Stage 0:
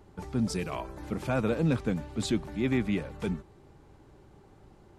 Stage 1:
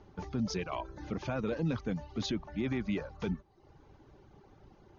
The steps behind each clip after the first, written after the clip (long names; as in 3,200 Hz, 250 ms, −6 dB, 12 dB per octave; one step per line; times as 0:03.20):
reverb reduction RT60 0.68 s
Chebyshev low-pass filter 6,700 Hz, order 10
brickwall limiter −24.5 dBFS, peak gain reduction 7.5 dB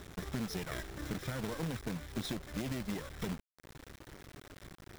lower of the sound and its delayed copy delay 0.54 ms
downward compressor 2.5 to 1, threshold −43 dBFS, peak gain reduction 10 dB
log-companded quantiser 4 bits
level +4 dB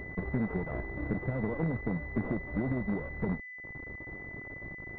switching amplifier with a slow clock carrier 2,000 Hz
level +6.5 dB